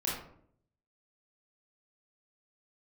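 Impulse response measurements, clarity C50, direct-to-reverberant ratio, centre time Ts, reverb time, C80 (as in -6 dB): 2.0 dB, -6.0 dB, 49 ms, 0.65 s, 6.5 dB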